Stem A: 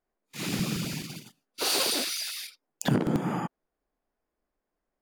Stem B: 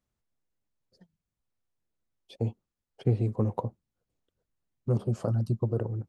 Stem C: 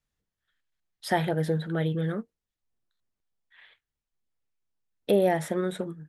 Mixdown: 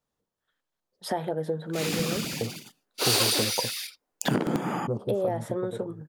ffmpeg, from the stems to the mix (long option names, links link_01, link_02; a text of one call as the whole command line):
ffmpeg -i stem1.wav -i stem2.wav -i stem3.wav -filter_complex "[0:a]adelay=1400,volume=3dB[link_01];[1:a]agate=range=-12dB:threshold=-58dB:ratio=16:detection=peak,dynaudnorm=framelen=220:gausssize=9:maxgain=15dB,volume=-14dB[link_02];[2:a]acompressor=threshold=-32dB:ratio=2,volume=0.5dB[link_03];[link_02][link_03]amix=inputs=2:normalize=0,equalizer=frequency=125:width_type=o:width=1:gain=5,equalizer=frequency=250:width_type=o:width=1:gain=6,equalizer=frequency=500:width_type=o:width=1:gain=8,equalizer=frequency=1000:width_type=o:width=1:gain=7,equalizer=frequency=2000:width_type=o:width=1:gain=-5,acompressor=threshold=-30dB:ratio=1.5,volume=0dB[link_04];[link_01][link_04]amix=inputs=2:normalize=0,lowshelf=frequency=210:gain=-9" out.wav